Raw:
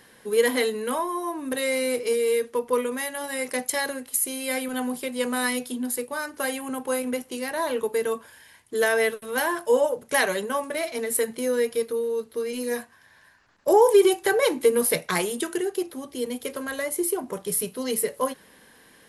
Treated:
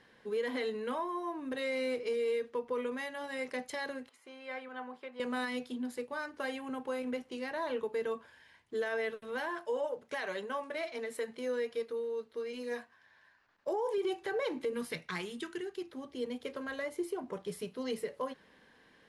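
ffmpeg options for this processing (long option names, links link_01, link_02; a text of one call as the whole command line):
ffmpeg -i in.wav -filter_complex "[0:a]asettb=1/sr,asplit=3[link_01][link_02][link_03];[link_01]atrim=end=4.094[link_04];[link_02]atrim=start=4.09:end=5.2,asetpts=PTS-STARTPTS,afade=type=in:duration=0.004:curve=qsin,afade=type=out:start_time=1.106:duration=0.004:curve=qsin,bandpass=frequency=1100:width_type=q:width=1[link_05];[link_03]atrim=start=5.196[link_06];[link_04][link_05]acrossfade=duration=0.004:curve1=hsin:curve2=qsin[link_07];[link_07][link_06]acrossfade=duration=0.004:curve1=qsin:curve2=hsin,asettb=1/sr,asplit=3[link_08][link_09][link_10];[link_08]atrim=end=9.494[link_11];[link_09]atrim=start=9.49:end=13.98,asetpts=PTS-STARTPTS,afade=type=in:duration=0.004:curve=qsin,afade=type=out:start_time=4.486:duration=0.004:curve=qsin,lowshelf=frequency=260:gain=-8[link_12];[link_10]atrim=start=13.976[link_13];[link_11][link_12]acrossfade=duration=0.004:curve1=hsin:curve2=qsin[link_14];[link_14][link_13]acrossfade=duration=0.004:curve1=qsin:curve2=hsin,asettb=1/sr,asplit=3[link_15][link_16][link_17];[link_15]atrim=end=14.734[link_18];[link_16]atrim=start=14.73:end=15.92,asetpts=PTS-STARTPTS,afade=type=in:duration=0.004:curve=qsin,afade=type=out:start_time=1.186:duration=0.004:curve=qsin,equalizer=frequency=590:width=1.2:gain=-11.5[link_19];[link_17]atrim=start=15.916[link_20];[link_18][link_19]acrossfade=duration=0.004:curve1=hsin:curve2=qsin[link_21];[link_21][link_20]acrossfade=duration=0.004:curve1=qsin:curve2=hsin,lowpass=4200,alimiter=limit=-18.5dB:level=0:latency=1:release=94,volume=-8dB" out.wav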